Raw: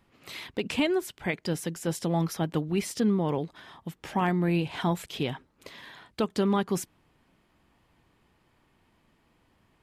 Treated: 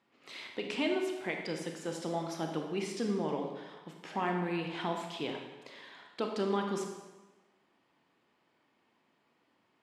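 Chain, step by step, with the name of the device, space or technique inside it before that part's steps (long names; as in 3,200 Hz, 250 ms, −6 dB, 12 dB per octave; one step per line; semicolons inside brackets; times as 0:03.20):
supermarket ceiling speaker (band-pass filter 250–6,700 Hz; convolution reverb RT60 1.2 s, pre-delay 25 ms, DRR 2.5 dB)
level −6 dB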